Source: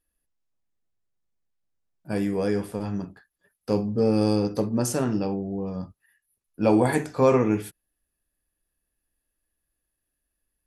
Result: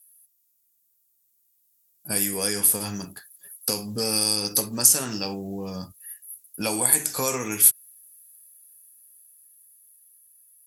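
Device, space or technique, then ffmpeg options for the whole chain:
FM broadcast chain: -filter_complex "[0:a]highpass=66,dynaudnorm=framelen=380:gausssize=13:maxgain=11.5dB,acrossover=split=910|5900[link_01][link_02][link_03];[link_01]acompressor=threshold=-26dB:ratio=4[link_04];[link_02]acompressor=threshold=-30dB:ratio=4[link_05];[link_03]acompressor=threshold=-39dB:ratio=4[link_06];[link_04][link_05][link_06]amix=inputs=3:normalize=0,aemphasis=mode=production:type=75fm,alimiter=limit=-12dB:level=0:latency=1:release=249,asoftclip=type=hard:threshold=-13dB,lowpass=frequency=15000:width=0.5412,lowpass=frequency=15000:width=1.3066,aemphasis=mode=production:type=75fm,volume=-2.5dB"

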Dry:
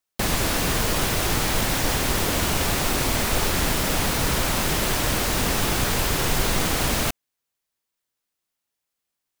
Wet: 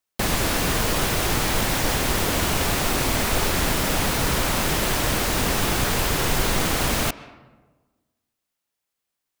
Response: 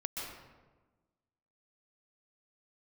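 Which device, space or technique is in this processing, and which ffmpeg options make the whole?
filtered reverb send: -filter_complex "[0:a]asplit=2[link_01][link_02];[link_02]highpass=frequency=210:poles=1,lowpass=3900[link_03];[1:a]atrim=start_sample=2205[link_04];[link_03][link_04]afir=irnorm=-1:irlink=0,volume=-15dB[link_05];[link_01][link_05]amix=inputs=2:normalize=0"

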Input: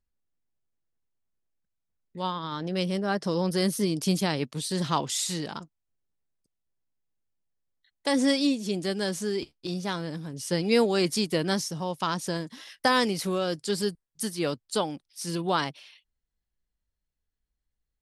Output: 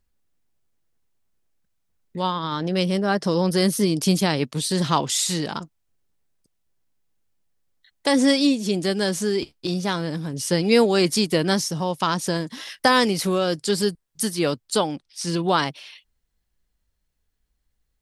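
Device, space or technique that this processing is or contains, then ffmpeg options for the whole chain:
parallel compression: -filter_complex "[0:a]asplit=2[link_01][link_02];[link_02]acompressor=threshold=-38dB:ratio=6,volume=-1.5dB[link_03];[link_01][link_03]amix=inputs=2:normalize=0,asettb=1/sr,asplit=3[link_04][link_05][link_06];[link_04]atrim=end=14.874[link_07];[link_05]atrim=start=14.87:end=15.48,asetpts=PTS-STARTPTS,afade=type=in:duration=0.004:curve=qsin,afade=type=out:start_time=0.606:duration=0.004:curve=qsin,lowpass=7500[link_08];[link_06]atrim=start=15.476[link_09];[link_07][link_08]acrossfade=duration=0.004:curve1=hsin:curve2=qsin[link_10];[link_10][link_09]acrossfade=duration=0.004:curve1=qsin:curve2=hsin,volume=4.5dB"

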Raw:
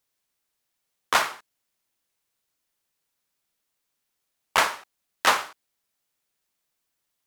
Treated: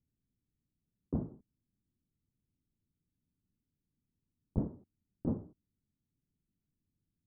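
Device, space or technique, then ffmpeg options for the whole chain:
the neighbour's flat through the wall: -af "lowpass=frequency=250:width=0.5412,lowpass=frequency=250:width=1.3066,equalizer=frequency=94:width_type=o:width=0.77:gain=3.5,volume=12dB"

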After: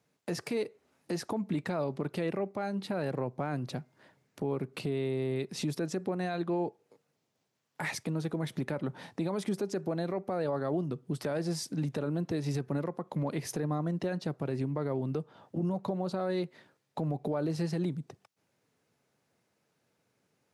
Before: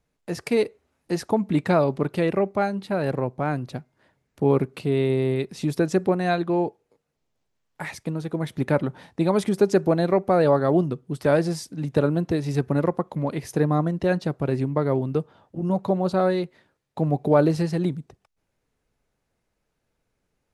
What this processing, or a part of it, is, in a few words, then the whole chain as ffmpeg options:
broadcast voice chain: -af "highpass=frequency=110:width=0.5412,highpass=frequency=110:width=1.3066,deesser=0.6,acompressor=threshold=-32dB:ratio=3,equalizer=frequency=5200:width_type=o:width=0.77:gain=2,alimiter=level_in=1.5dB:limit=-24dB:level=0:latency=1:release=24,volume=-1.5dB,volume=2dB"

